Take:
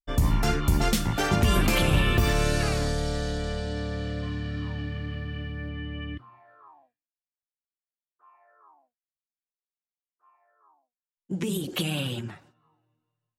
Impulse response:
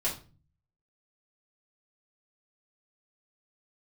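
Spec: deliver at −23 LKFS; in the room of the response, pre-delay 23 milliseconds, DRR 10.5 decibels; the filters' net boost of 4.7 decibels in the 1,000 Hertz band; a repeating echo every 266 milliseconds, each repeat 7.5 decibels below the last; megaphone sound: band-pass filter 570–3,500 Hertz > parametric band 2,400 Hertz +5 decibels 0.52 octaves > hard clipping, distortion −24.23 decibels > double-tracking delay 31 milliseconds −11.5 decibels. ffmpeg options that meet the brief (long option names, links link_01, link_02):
-filter_complex "[0:a]equalizer=frequency=1000:width_type=o:gain=7,aecho=1:1:266|532|798|1064|1330:0.422|0.177|0.0744|0.0312|0.0131,asplit=2[link_01][link_02];[1:a]atrim=start_sample=2205,adelay=23[link_03];[link_02][link_03]afir=irnorm=-1:irlink=0,volume=-17dB[link_04];[link_01][link_04]amix=inputs=2:normalize=0,highpass=570,lowpass=3500,equalizer=frequency=2400:width_type=o:width=0.52:gain=5,asoftclip=type=hard:threshold=-17dB,asplit=2[link_05][link_06];[link_06]adelay=31,volume=-11.5dB[link_07];[link_05][link_07]amix=inputs=2:normalize=0,volume=5.5dB"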